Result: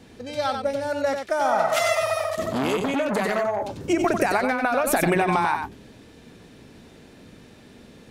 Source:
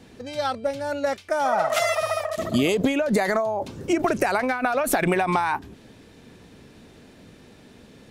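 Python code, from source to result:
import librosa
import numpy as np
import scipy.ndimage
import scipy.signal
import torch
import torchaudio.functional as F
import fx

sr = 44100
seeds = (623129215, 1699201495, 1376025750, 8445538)

y = x + 10.0 ** (-6.0 / 20.0) * np.pad(x, (int(94 * sr / 1000.0), 0))[:len(x)]
y = fx.transformer_sat(y, sr, knee_hz=1100.0, at=(2.5, 3.84))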